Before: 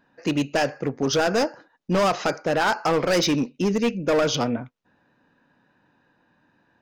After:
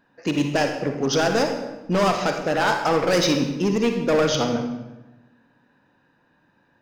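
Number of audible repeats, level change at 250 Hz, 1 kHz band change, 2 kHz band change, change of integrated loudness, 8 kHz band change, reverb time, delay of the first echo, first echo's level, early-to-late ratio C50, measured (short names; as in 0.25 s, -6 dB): none, +1.5 dB, +1.5 dB, +1.0 dB, +1.0 dB, +1.0 dB, 1.1 s, none, none, 5.5 dB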